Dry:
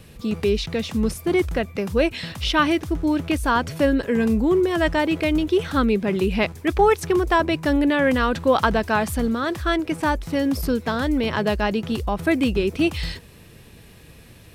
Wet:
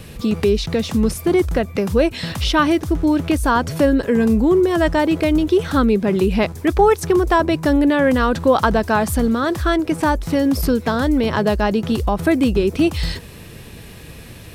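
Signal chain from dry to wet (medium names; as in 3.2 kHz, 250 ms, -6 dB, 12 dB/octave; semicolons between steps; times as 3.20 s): dynamic bell 2.5 kHz, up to -6 dB, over -38 dBFS, Q 1.1; in parallel at +2.5 dB: compression, threshold -28 dBFS, peak gain reduction 15 dB; on the sum: trim +1.5 dB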